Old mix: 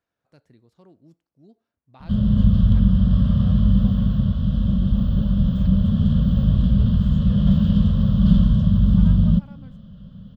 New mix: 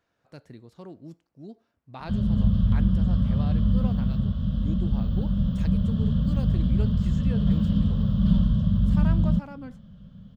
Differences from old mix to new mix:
speech +9.0 dB; background -5.5 dB

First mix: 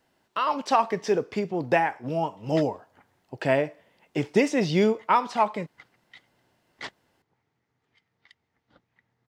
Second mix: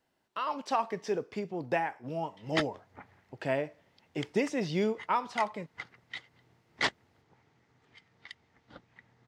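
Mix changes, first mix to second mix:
speech -8.0 dB; background +9.0 dB

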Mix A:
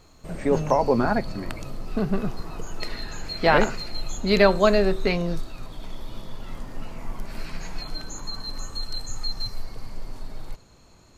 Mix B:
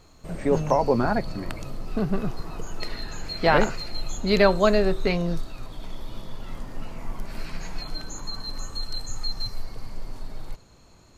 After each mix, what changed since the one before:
reverb: off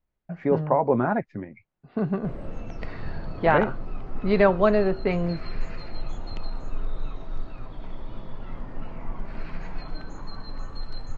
background: entry +2.00 s; master: add low-pass 2.1 kHz 12 dB/octave

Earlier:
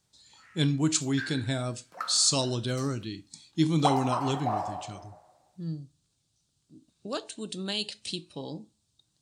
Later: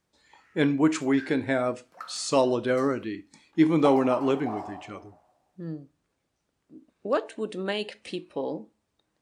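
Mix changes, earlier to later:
speech: add graphic EQ 125/250/500/1000/2000/4000/8000 Hz -9/+4/+10/+5/+11/-10/-10 dB; background -5.5 dB

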